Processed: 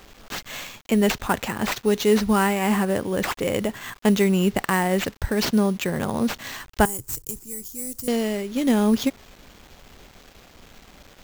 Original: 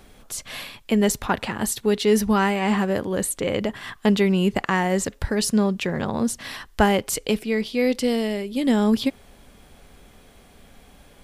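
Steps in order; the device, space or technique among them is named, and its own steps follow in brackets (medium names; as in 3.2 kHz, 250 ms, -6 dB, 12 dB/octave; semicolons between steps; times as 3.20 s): early 8-bit sampler (sample-rate reducer 10 kHz, jitter 0%; bit crusher 8-bit); 6.85–8.08 s: FFT filter 130 Hz 0 dB, 200 Hz -18 dB, 330 Hz -10 dB, 590 Hz -27 dB, 930 Hz -17 dB, 2.2 kHz -24 dB, 3.6 kHz -21 dB, 8.1 kHz +6 dB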